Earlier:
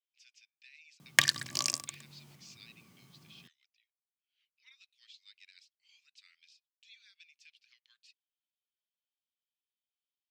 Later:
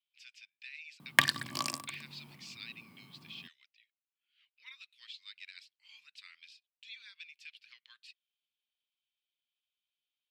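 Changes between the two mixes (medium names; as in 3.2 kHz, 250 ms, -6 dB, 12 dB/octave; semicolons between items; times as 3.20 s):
speech +10.0 dB; master: add fifteen-band graphic EQ 250 Hz +7 dB, 1 kHz +7 dB, 6.3 kHz -11 dB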